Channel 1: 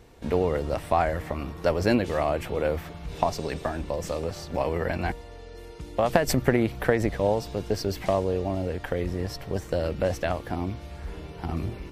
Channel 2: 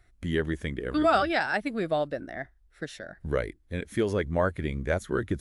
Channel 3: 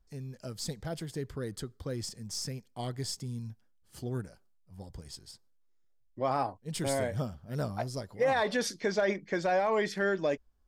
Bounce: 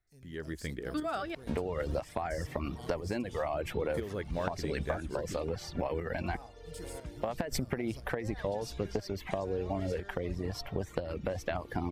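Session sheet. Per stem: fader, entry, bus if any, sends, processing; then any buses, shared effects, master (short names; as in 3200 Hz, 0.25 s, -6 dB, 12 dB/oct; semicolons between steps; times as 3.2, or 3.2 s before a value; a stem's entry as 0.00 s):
+2.5 dB, 1.25 s, no send, reverb removal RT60 0.97 s; high shelf 6300 Hz -6.5 dB; compressor, threshold -25 dBFS, peak gain reduction 10 dB
-14.5 dB, 0.00 s, muted 1.35–3.94, no send, AGC gain up to 13 dB; short-mantissa float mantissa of 6-bit
-12.0 dB, 0.00 s, no send, high shelf 5500 Hz +11.5 dB; limiter -26 dBFS, peak gain reduction 11 dB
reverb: off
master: tremolo saw up 1 Hz, depth 55%; compressor, threshold -29 dBFS, peak gain reduction 8 dB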